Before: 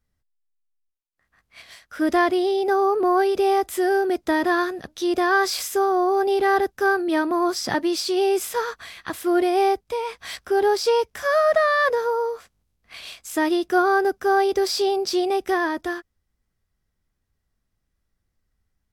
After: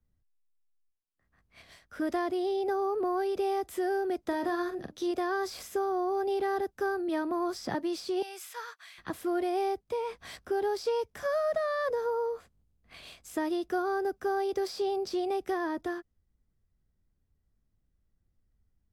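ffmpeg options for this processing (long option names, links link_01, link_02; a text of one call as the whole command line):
ffmpeg -i in.wav -filter_complex "[0:a]asettb=1/sr,asplit=3[link_01][link_02][link_03];[link_01]atrim=end=4.264[link_04];[link_02]atrim=start=4.26:end=5.11,asetpts=PTS-STARTPTS,afade=type=in:duration=0.004:curve=qsin,afade=type=out:start_time=0.846:duration=0.004:curve=qsin,asplit=2[link_05][link_06];[link_06]adelay=43,volume=-8.5dB[link_07];[link_05][link_07]amix=inputs=2:normalize=0,atrim=end_sample=37485[link_08];[link_03]atrim=start=5.106[link_09];[link_04][link_08]acrossfade=duration=0.004:curve1=hsin:curve2=qsin[link_10];[link_10][link_09]acrossfade=duration=0.004:curve1=qsin:curve2=hsin,asettb=1/sr,asplit=3[link_11][link_12][link_13];[link_11]atrim=end=8.224[link_14];[link_12]atrim=start=8.22:end=8.98,asetpts=PTS-STARTPTS,afade=type=in:duration=0.004:curve=qsin,afade=type=out:start_time=0.756:duration=0.004:curve=qsin,highpass=1400[link_15];[link_13]atrim=start=8.976[link_16];[link_14][link_15]acrossfade=duration=0.004:curve1=hsin:curve2=qsin[link_17];[link_17][link_16]acrossfade=duration=0.004:curve1=qsin:curve2=hsin,asettb=1/sr,asplit=3[link_18][link_19][link_20];[link_18]atrim=end=12.064[link_21];[link_19]atrim=start=12.06:end=13.19,asetpts=PTS-STARTPTS,afade=type=in:duration=0.004:curve=qsin,afade=type=out:start_time=1.126:duration=0.004:curve=qsin,bandreject=frequency=5600:width=12[link_22];[link_20]atrim=start=13.186[link_23];[link_21][link_22]acrossfade=duration=0.004:curve1=hsin:curve2=qsin[link_24];[link_24][link_23]acrossfade=duration=0.004:curve1=qsin:curve2=hsin,tiltshelf=frequency=660:gain=6.5,acrossover=split=100|540|1800|3900[link_25][link_26][link_27][link_28][link_29];[link_25]acompressor=threshold=-58dB:ratio=4[link_30];[link_26]acompressor=threshold=-30dB:ratio=4[link_31];[link_27]acompressor=threshold=-27dB:ratio=4[link_32];[link_28]acompressor=threshold=-44dB:ratio=4[link_33];[link_29]acompressor=threshold=-39dB:ratio=4[link_34];[link_30][link_31][link_32][link_33][link_34]amix=inputs=5:normalize=0,volume=-5dB" out.wav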